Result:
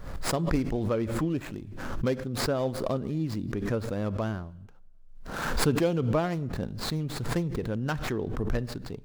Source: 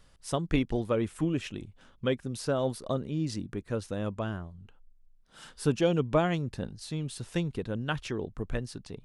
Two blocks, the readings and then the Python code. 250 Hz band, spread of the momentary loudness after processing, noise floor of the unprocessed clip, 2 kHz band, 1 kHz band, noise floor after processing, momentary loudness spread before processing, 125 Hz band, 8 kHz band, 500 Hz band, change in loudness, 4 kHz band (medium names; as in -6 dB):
+2.0 dB, 8 LU, -60 dBFS, +3.0 dB, +2.5 dB, -47 dBFS, 12 LU, +2.5 dB, +4.5 dB, +1.0 dB, +1.5 dB, +2.5 dB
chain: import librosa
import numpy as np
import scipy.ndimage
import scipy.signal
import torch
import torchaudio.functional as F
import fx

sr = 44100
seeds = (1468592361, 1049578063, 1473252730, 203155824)

p1 = scipy.ndimage.median_filter(x, 15, mode='constant')
p2 = fx.rider(p1, sr, range_db=5, speed_s=0.5)
p3 = p1 + F.gain(torch.from_numpy(p2), 0.0).numpy()
p4 = fx.rev_double_slope(p3, sr, seeds[0], early_s=0.87, late_s=2.2, knee_db=-24, drr_db=19.5)
p5 = fx.pre_swell(p4, sr, db_per_s=43.0)
y = F.gain(torch.from_numpy(p5), -5.5).numpy()